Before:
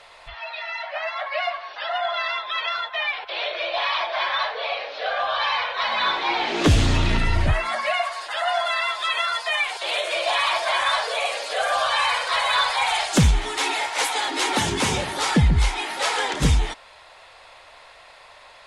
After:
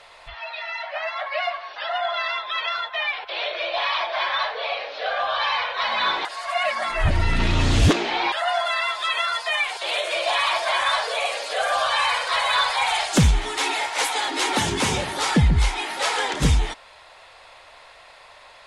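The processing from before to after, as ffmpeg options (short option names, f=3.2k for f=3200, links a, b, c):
-filter_complex "[0:a]asplit=3[a][b][c];[a]atrim=end=6.252[d];[b]atrim=start=6.248:end=8.322,asetpts=PTS-STARTPTS,areverse[e];[c]atrim=start=8.318[f];[d][e]acrossfade=d=0.004:c1=hsin:c2=hsin[g];[g][f]acrossfade=d=0.004:c1=hsin:c2=hsin"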